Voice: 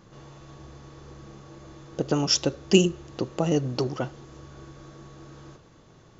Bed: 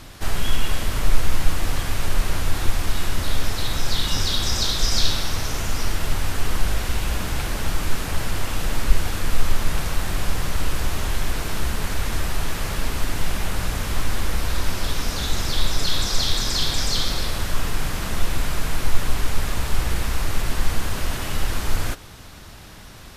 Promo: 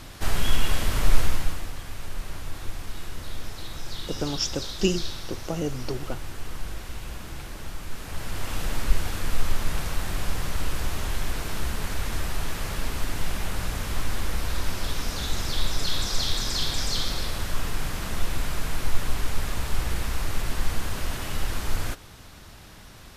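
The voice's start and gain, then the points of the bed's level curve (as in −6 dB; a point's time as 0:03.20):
2.10 s, −5.5 dB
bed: 0:01.21 −1 dB
0:01.73 −12.5 dB
0:07.88 −12.5 dB
0:08.53 −4.5 dB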